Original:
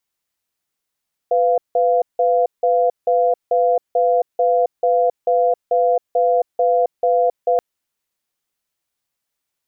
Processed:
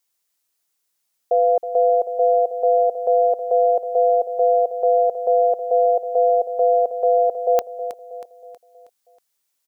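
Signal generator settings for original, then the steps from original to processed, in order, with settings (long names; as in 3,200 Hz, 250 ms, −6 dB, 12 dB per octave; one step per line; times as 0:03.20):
tone pair in a cadence 499 Hz, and 695 Hz, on 0.27 s, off 0.17 s, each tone −15.5 dBFS 6.28 s
bass and treble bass −7 dB, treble +7 dB
repeating echo 319 ms, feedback 46%, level −11 dB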